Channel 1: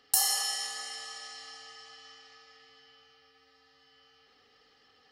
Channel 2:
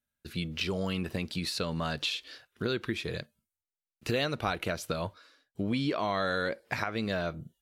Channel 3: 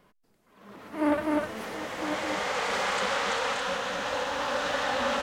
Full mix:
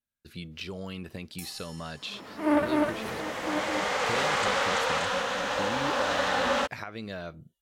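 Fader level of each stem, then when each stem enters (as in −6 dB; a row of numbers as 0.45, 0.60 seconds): −19.0, −6.0, +1.5 decibels; 1.25, 0.00, 1.45 seconds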